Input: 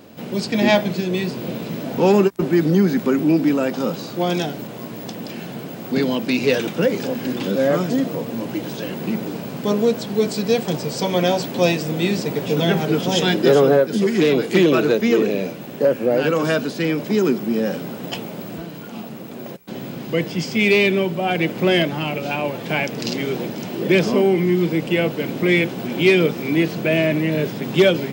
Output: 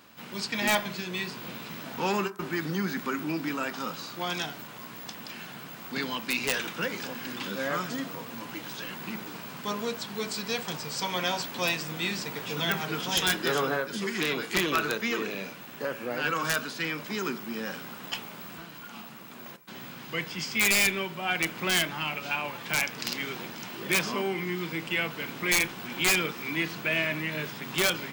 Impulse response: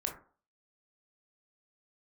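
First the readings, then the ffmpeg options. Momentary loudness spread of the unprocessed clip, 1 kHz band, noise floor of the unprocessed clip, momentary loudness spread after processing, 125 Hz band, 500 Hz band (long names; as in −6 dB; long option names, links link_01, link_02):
14 LU, −6.0 dB, −33 dBFS, 14 LU, −15.0 dB, −16.5 dB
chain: -filter_complex "[0:a]lowshelf=frequency=790:width_type=q:width=1.5:gain=-10.5,aeval=exprs='(mod(3.55*val(0)+1,2)-1)/3.55':channel_layout=same,asplit=2[link_01][link_02];[1:a]atrim=start_sample=2205[link_03];[link_02][link_03]afir=irnorm=-1:irlink=0,volume=-9.5dB[link_04];[link_01][link_04]amix=inputs=2:normalize=0,volume=-6.5dB"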